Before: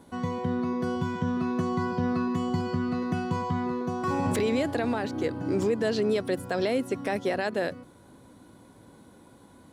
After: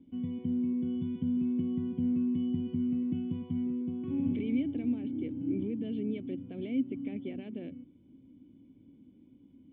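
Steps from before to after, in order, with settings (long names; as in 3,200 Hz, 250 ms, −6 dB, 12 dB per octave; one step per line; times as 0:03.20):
formant resonators in series i
low-shelf EQ 150 Hz +5.5 dB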